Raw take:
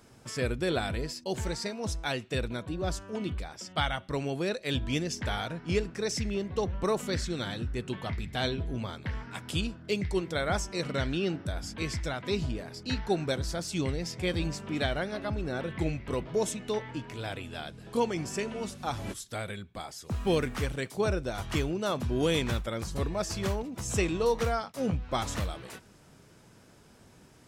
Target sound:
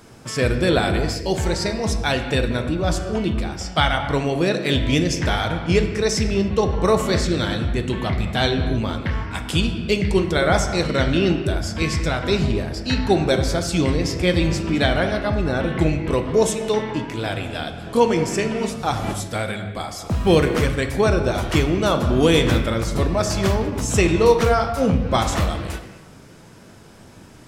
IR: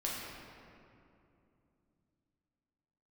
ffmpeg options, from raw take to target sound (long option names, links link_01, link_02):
-filter_complex "[0:a]asplit=2[link_01][link_02];[1:a]atrim=start_sample=2205,afade=type=out:start_time=0.36:duration=0.01,atrim=end_sample=16317,highshelf=frequency=5600:gain=-6.5[link_03];[link_02][link_03]afir=irnorm=-1:irlink=0,volume=-3.5dB[link_04];[link_01][link_04]amix=inputs=2:normalize=0,volume=7dB"